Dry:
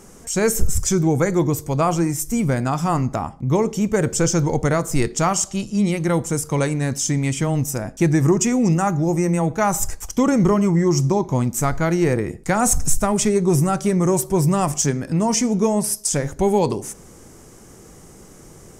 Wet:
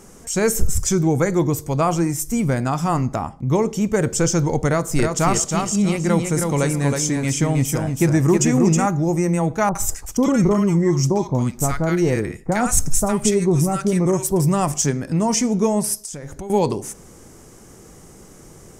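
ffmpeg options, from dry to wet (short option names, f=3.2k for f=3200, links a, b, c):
-filter_complex "[0:a]asettb=1/sr,asplit=3[a][b][c];[a]atrim=end=4.674[d];[b]atrim=start=4.67:end=8.86,asetpts=PTS-STARTPTS,afade=t=in:d=0.004:c=qsin,afade=t=out:st=4.186:d=0.004:c=qsin,aecho=1:1:318|636|954:0.596|0.143|0.0343,atrim=end_sample=184779[e];[c]atrim=start=8.856[f];[d][e]acrossfade=d=0.004:c1=hsin:c2=qsin[g];[g][f]acrossfade=d=0.004:c1=qsin:c2=hsin,asettb=1/sr,asplit=3[h][i][j];[h]atrim=end=9.694[k];[i]atrim=start=9.69:end=14.4,asetpts=PTS-STARTPTS,afade=t=in:d=0.004:c=qsin,afade=t=out:st=4.706:d=0.004:c=qsin,acrossover=split=1100[l][m];[m]adelay=60[n];[l][n]amix=inputs=2:normalize=0,atrim=end_sample=207711[o];[j]atrim=start=14.396[p];[k][o]acrossfade=d=0.004:c1=hsin:c2=qsin[q];[q][p]acrossfade=d=0.004:c1=qsin:c2=hsin,asettb=1/sr,asplit=3[r][s][t];[r]atrim=end=15.994[u];[s]atrim=start=15.99:end=16.5,asetpts=PTS-STARTPTS,afade=t=in:d=0.004:c=qsin,afade=t=out:st=0.506:d=0.004:c=qsin,acompressor=threshold=-29dB:ratio=6:attack=3.2:release=140:knee=1:detection=peak[v];[t]atrim=start=16.496[w];[u][v]acrossfade=d=0.004:c1=hsin:c2=qsin[x];[x][w]acrossfade=d=0.004:c1=qsin:c2=hsin"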